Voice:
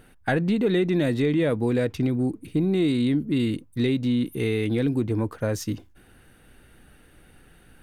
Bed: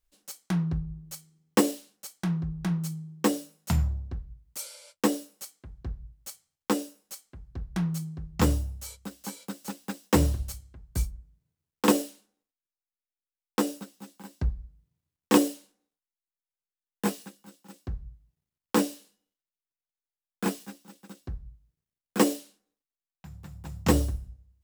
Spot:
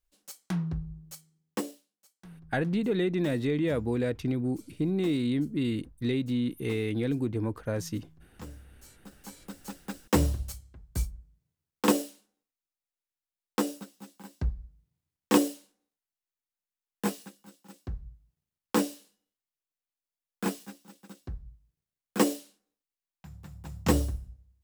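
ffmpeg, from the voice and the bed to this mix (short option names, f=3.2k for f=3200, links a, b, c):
-filter_complex "[0:a]adelay=2250,volume=-5.5dB[a];[1:a]volume=15.5dB,afade=t=out:st=1.04:d=0.83:silence=0.133352,afade=t=in:st=8.63:d=1.44:silence=0.112202[b];[a][b]amix=inputs=2:normalize=0"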